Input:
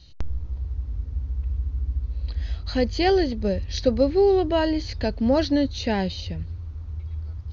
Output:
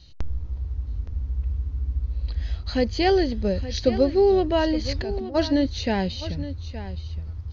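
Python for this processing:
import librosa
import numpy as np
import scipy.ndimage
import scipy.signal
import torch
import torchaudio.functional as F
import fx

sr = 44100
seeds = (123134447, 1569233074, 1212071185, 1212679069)

y = fx.over_compress(x, sr, threshold_db=-30.0, ratio=-1.0, at=(4.84, 5.34), fade=0.02)
y = y + 10.0 ** (-13.5 / 20.0) * np.pad(y, (int(869 * sr / 1000.0), 0))[:len(y)]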